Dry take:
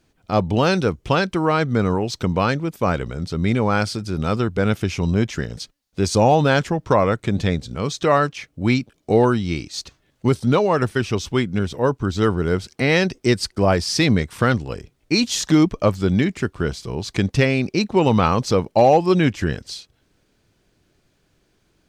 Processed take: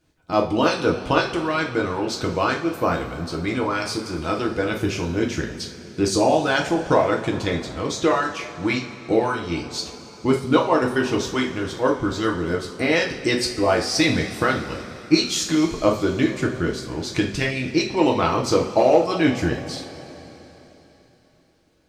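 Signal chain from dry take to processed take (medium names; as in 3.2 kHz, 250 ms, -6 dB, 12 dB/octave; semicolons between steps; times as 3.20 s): harmonic-percussive split harmonic -13 dB; two-slope reverb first 0.36 s, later 3.8 s, from -18 dB, DRR -0.5 dB; trim -1.5 dB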